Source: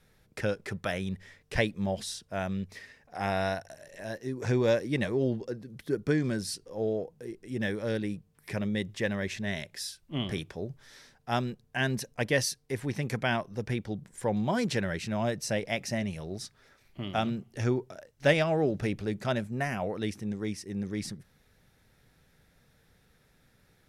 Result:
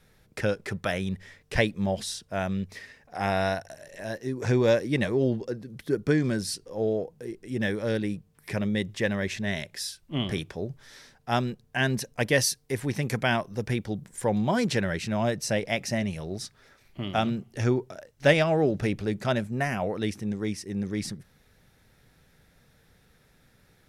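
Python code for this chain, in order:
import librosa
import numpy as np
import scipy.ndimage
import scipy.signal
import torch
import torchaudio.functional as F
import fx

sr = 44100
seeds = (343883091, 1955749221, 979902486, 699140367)

y = fx.high_shelf(x, sr, hz=7700.0, db=5.5, at=(12.15, 14.38))
y = y * 10.0 ** (3.5 / 20.0)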